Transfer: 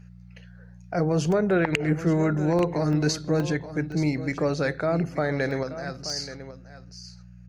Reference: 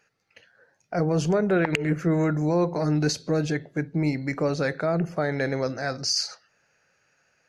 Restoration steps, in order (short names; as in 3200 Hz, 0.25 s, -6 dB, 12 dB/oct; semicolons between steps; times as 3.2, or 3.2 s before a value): de-hum 59.8 Hz, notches 3; interpolate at 1.32/2.59/2.93/3.4/3.92/5.51/6.1, 1 ms; inverse comb 0.878 s -13.5 dB; gain correction +6.5 dB, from 5.63